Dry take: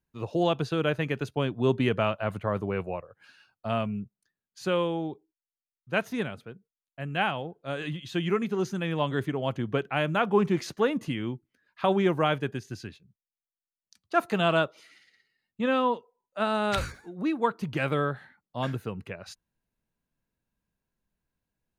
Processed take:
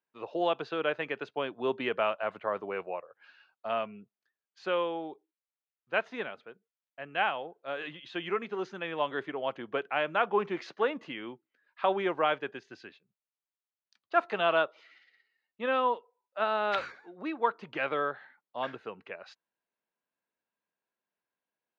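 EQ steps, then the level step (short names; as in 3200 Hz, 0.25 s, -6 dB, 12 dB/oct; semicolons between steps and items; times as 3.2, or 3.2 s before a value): BPF 480–3900 Hz; air absorption 100 m; 0.0 dB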